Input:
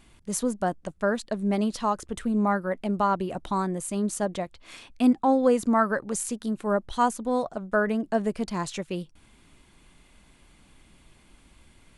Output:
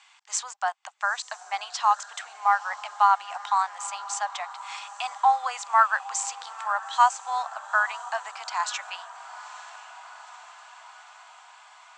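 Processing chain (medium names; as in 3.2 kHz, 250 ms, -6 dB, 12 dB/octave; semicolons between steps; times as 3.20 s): Chebyshev band-pass 770–7800 Hz, order 5; echo that smears into a reverb 918 ms, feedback 63%, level -16 dB; trim +6.5 dB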